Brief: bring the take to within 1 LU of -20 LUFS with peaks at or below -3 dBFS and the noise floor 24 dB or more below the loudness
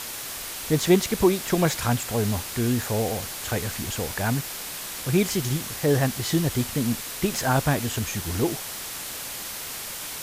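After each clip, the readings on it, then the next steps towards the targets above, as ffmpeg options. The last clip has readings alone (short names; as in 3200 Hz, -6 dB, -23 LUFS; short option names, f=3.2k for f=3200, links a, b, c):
noise floor -35 dBFS; noise floor target -50 dBFS; loudness -25.5 LUFS; peak -7.0 dBFS; loudness target -20.0 LUFS
-> -af "afftdn=nr=15:nf=-35"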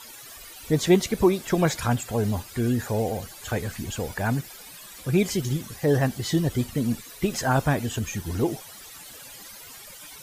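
noise floor -44 dBFS; noise floor target -50 dBFS
-> -af "afftdn=nr=6:nf=-44"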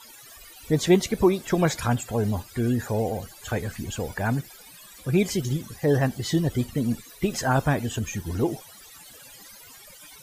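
noise floor -48 dBFS; noise floor target -50 dBFS
-> -af "afftdn=nr=6:nf=-48"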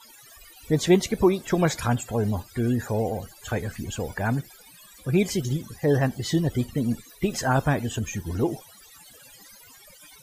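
noise floor -51 dBFS; loudness -25.5 LUFS; peak -7.5 dBFS; loudness target -20.0 LUFS
-> -af "volume=5.5dB,alimiter=limit=-3dB:level=0:latency=1"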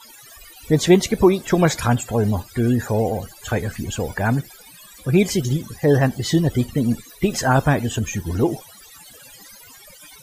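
loudness -20.0 LUFS; peak -3.0 dBFS; noise floor -45 dBFS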